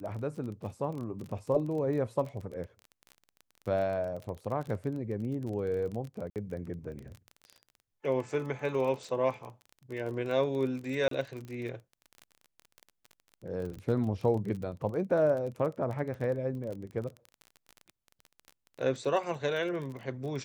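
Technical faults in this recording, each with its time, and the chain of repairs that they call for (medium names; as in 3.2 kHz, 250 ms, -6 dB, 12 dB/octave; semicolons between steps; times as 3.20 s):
crackle 25 per s -37 dBFS
6.30–6.36 s: dropout 58 ms
11.08–11.11 s: dropout 33 ms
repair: de-click; interpolate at 6.30 s, 58 ms; interpolate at 11.08 s, 33 ms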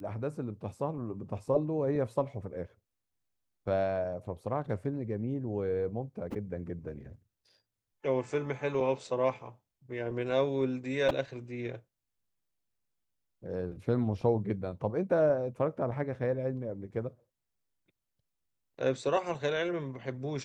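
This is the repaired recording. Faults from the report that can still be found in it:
nothing left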